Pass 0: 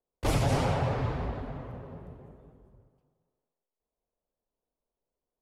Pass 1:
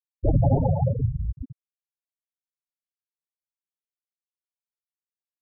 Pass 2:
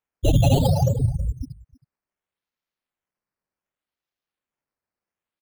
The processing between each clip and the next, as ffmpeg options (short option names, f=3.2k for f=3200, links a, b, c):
-af "afftfilt=real='re*gte(hypot(re,im),0.158)':imag='im*gte(hypot(re,im),0.158)':win_size=1024:overlap=0.75,volume=8dB"
-filter_complex "[0:a]asplit=2[a][b];[b]asoftclip=type=tanh:threshold=-21.5dB,volume=-10dB[c];[a][c]amix=inputs=2:normalize=0,acrusher=samples=9:mix=1:aa=0.000001:lfo=1:lforange=9:lforate=0.67,aecho=1:1:320:0.075,volume=1.5dB"